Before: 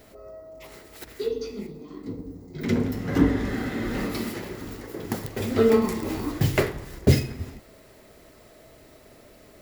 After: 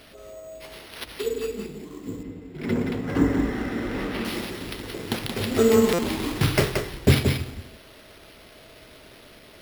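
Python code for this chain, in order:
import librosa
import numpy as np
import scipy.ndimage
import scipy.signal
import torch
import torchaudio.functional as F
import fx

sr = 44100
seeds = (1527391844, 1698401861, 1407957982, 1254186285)

y = fx.high_shelf(x, sr, hz=7800.0, db=9.0)
y = y + 10.0 ** (-5.5 / 20.0) * np.pad(y, (int(177 * sr / 1000.0), 0))[:len(y)]
y = np.repeat(y[::6], 6)[:len(y)]
y = fx.bass_treble(y, sr, bass_db=-3, treble_db=-13, at=(2.23, 4.25))
y = fx.buffer_glitch(y, sr, at_s=(5.93,), block=256, repeats=9)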